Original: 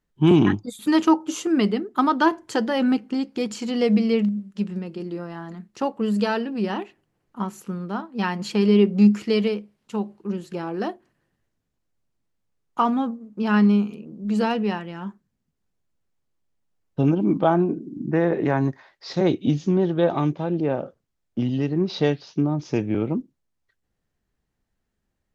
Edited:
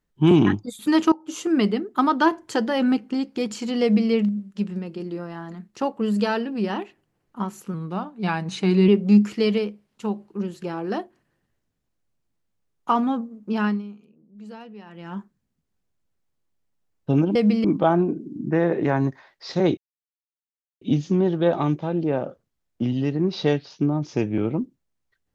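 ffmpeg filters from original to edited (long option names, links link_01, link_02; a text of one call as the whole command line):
ffmpeg -i in.wav -filter_complex "[0:a]asplit=9[link_01][link_02][link_03][link_04][link_05][link_06][link_07][link_08][link_09];[link_01]atrim=end=1.12,asetpts=PTS-STARTPTS,afade=type=out:start_time=1.116:duration=0.004:curve=hsin:silence=0.0794328[link_10];[link_02]atrim=start=1.12:end=7.744,asetpts=PTS-STARTPTS,afade=type=in:duration=0.35:silence=0.0794328[link_11];[link_03]atrim=start=7.74:end=8.78,asetpts=PTS-STARTPTS,asetrate=40131,aresample=44100[link_12];[link_04]atrim=start=8.776:end=13.72,asetpts=PTS-STARTPTS,afade=type=out:start_time=4.664:duration=0.28:silence=0.125893[link_13];[link_05]atrim=start=13.72:end=14.75,asetpts=PTS-STARTPTS,volume=-18dB[link_14];[link_06]atrim=start=14.75:end=17.252,asetpts=PTS-STARTPTS,afade=type=in:duration=0.28:silence=0.125893[link_15];[link_07]atrim=start=3.818:end=4.112[link_16];[link_08]atrim=start=17.248:end=19.38,asetpts=PTS-STARTPTS,afade=type=out:start_time=2.128:duration=0.004:curve=hsin,apad=pad_dur=1.04[link_17];[link_09]atrim=start=19.38,asetpts=PTS-STARTPTS,afade=type=in:duration=0.004:curve=hsin[link_18];[link_10][link_11]concat=n=2:v=0:a=1[link_19];[link_19][link_12]acrossfade=duration=0.004:curve1=hsin:curve2=hsin[link_20];[link_13][link_14][link_15]concat=n=3:v=0:a=1[link_21];[link_20][link_21]acrossfade=duration=0.004:curve1=hsin:curve2=hsin[link_22];[link_22][link_16]acrossfade=duration=0.004:curve1=hsin:curve2=hsin[link_23];[link_17][link_18]concat=n=2:v=0:a=1[link_24];[link_23][link_24]acrossfade=duration=0.004:curve1=hsin:curve2=hsin" out.wav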